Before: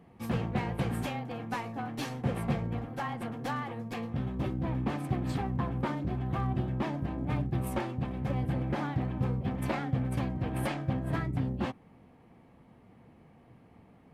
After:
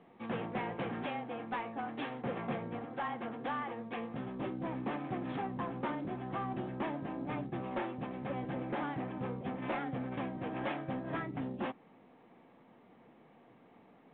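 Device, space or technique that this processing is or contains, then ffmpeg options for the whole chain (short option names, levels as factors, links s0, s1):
telephone: -af "highpass=260,lowpass=3300,asoftclip=type=tanh:threshold=0.0398" -ar 8000 -c:a pcm_mulaw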